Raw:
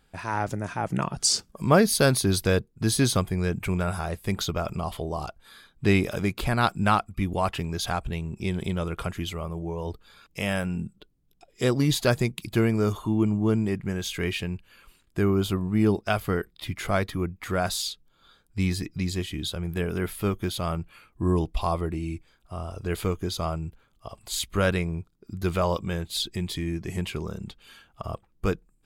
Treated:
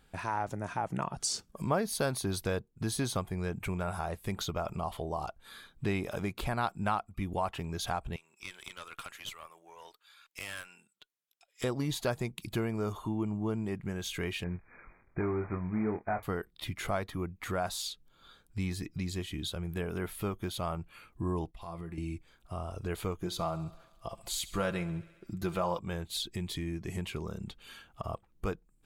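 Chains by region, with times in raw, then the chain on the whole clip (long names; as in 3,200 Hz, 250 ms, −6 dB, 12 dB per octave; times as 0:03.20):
0:08.16–0:11.64: high-pass filter 1,300 Hz + tube saturation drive 30 dB, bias 0.7
0:14.44–0:16.23: variable-slope delta modulation 16 kbit/s + linear-phase brick-wall low-pass 2,500 Hz + double-tracking delay 23 ms −7 dB
0:21.51–0:21.98: parametric band 1,800 Hz +5.5 dB 0.78 octaves + downward compressor 10 to 1, threshold −28 dBFS + tuned comb filter 170 Hz, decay 0.37 s, mix 70%
0:23.19–0:25.79: comb filter 5.9 ms, depth 53% + feedback echo with a high-pass in the loop 68 ms, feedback 63%, high-pass 260 Hz, level −18 dB
whole clip: notch filter 4,900 Hz, Q 19; dynamic equaliser 850 Hz, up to +7 dB, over −40 dBFS, Q 1.2; downward compressor 2 to 1, threshold −38 dBFS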